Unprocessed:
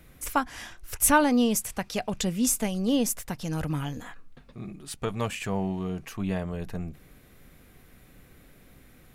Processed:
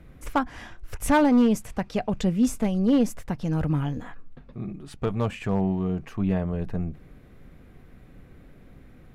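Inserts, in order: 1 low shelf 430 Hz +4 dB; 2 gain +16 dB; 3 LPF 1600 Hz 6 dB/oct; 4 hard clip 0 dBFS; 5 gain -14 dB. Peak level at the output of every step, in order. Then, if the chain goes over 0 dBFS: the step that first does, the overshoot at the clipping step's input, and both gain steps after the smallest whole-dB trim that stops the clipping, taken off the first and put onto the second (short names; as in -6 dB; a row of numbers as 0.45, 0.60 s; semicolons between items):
-6.5, +9.5, +8.0, 0.0, -14.0 dBFS; step 2, 8.0 dB; step 2 +8 dB, step 5 -6 dB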